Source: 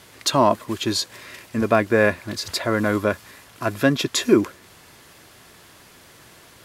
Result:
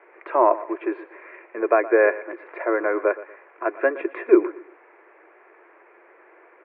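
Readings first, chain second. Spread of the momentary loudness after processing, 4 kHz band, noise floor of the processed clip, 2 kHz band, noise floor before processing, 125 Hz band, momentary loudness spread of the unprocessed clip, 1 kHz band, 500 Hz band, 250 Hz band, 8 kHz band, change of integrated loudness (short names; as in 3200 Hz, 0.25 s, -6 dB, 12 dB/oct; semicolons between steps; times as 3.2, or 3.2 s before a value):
15 LU, under -35 dB, -54 dBFS, -2.0 dB, -49 dBFS, under -40 dB, 12 LU, 0.0 dB, +1.5 dB, -4.0 dB, under -40 dB, -0.5 dB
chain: Chebyshev band-pass 340–2400 Hz, order 5; tilt -2 dB/oct; feedback echo 0.118 s, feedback 31%, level -17 dB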